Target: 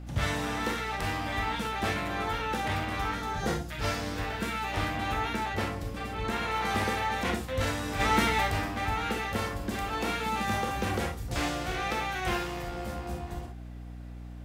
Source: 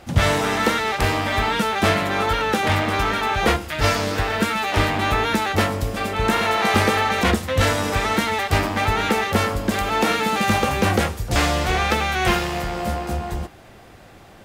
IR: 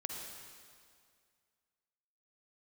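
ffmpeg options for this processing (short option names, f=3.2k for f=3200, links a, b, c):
-filter_complex "[0:a]asettb=1/sr,asplit=3[a][b][c];[a]atrim=end=3.154[d];[b]atrim=start=3.15:end=3.71,asetpts=PTS-STARTPTS,afade=t=in:d=0.004:c=qsin,afade=t=out:st=0.556:d=0.004:c=qsin,equalizer=f=160:t=o:w=0.67:g=10,equalizer=f=1k:t=o:w=0.67:g=-4,equalizer=f=2.5k:t=o:w=0.67:g=-9,equalizer=f=6.3k:t=o:w=0.67:g=4[e];[c]atrim=start=3.706[f];[d][e]acrossfade=d=0.004:c1=hsin:c2=qsin[g];[g][f]acrossfade=d=0.004:c1=qsin:c2=hsin[h];[1:a]atrim=start_sample=2205,afade=t=out:st=0.18:d=0.01,atrim=end_sample=8379,asetrate=83790,aresample=44100[i];[h][i]afir=irnorm=-1:irlink=0,aeval=exprs='val(0)+0.0158*(sin(2*PI*60*n/s)+sin(2*PI*2*60*n/s)/2+sin(2*PI*3*60*n/s)/3+sin(2*PI*4*60*n/s)/4+sin(2*PI*5*60*n/s)/5)':c=same,asettb=1/sr,asplit=3[j][k][l];[j]atrim=end=5.334[m];[k]atrim=start=5.33:end=6.55,asetpts=PTS-STARTPTS,afade=t=in:d=0.004:c=qsin,afade=t=out:st=1.216:d=0.004:c=qsin,highshelf=f=6.6k:g=-5[n];[l]atrim=start=6.546[o];[m][n]acrossfade=d=0.004:c1=hsin:c2=qsin[p];[p][o]acrossfade=d=0.004:c1=qsin:c2=hsin,asplit=3[q][r][s];[q]afade=t=out:st=7.99:d=0.02[t];[r]acontrast=74,afade=t=in:st=7.99:d=0.02,afade=t=out:st=8.5:d=0.02[u];[s]afade=t=in:st=8.5:d=0.02[v];[t][u][v]amix=inputs=3:normalize=0,volume=-4.5dB"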